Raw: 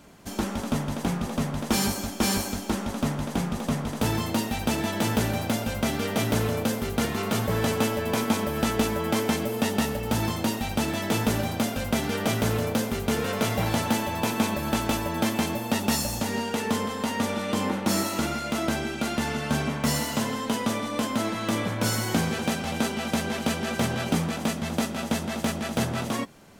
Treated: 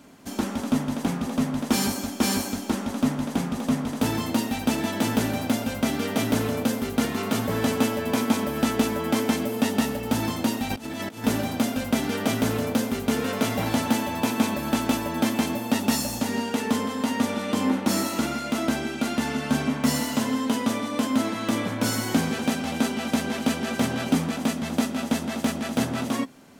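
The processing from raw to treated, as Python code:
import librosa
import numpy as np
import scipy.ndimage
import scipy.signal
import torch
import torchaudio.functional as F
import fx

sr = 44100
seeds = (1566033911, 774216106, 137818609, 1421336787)

y = fx.low_shelf(x, sr, hz=80.0, db=-10.0)
y = fx.over_compress(y, sr, threshold_db=-33.0, ratio=-0.5, at=(10.7, 11.24))
y = fx.peak_eq(y, sr, hz=260.0, db=11.5, octaves=0.21)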